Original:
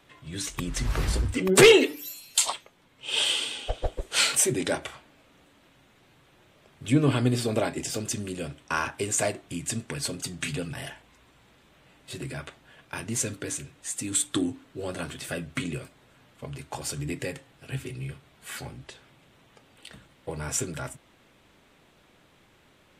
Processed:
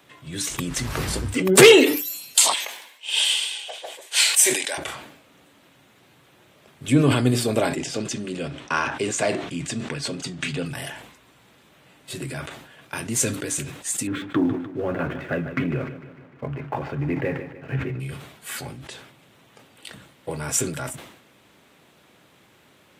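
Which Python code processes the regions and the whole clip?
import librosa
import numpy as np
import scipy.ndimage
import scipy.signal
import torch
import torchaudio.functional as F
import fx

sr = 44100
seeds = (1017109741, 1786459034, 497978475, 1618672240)

y = fx.chain(x, sr, fx.highpass(hz=980.0, slope=12),
    fx.peak_eq(hz=1300.0, db=-14.5, octaves=0.24), at=(2.54, 4.78))
y = fx.chain(y, sr, fx.lowpass(hz=5300.0, slope=12),
    fx.peak_eq(hz=97.0, db=-10.0, octaves=0.28), at=(7.76, 10.66))
y = fx.chain(y, sr, fx.lowpass(hz=2100.0, slope=24),
    fx.leveller(passes=1),
    fx.echo_feedback(ms=150, feedback_pct=57, wet_db=-14), at=(14.07, 18.0))
y = scipy.signal.sosfilt(scipy.signal.butter(2, 100.0, 'highpass', fs=sr, output='sos'), y)
y = fx.high_shelf(y, sr, hz=12000.0, db=8.0)
y = fx.sustainer(y, sr, db_per_s=71.0)
y = y * librosa.db_to_amplitude(4.0)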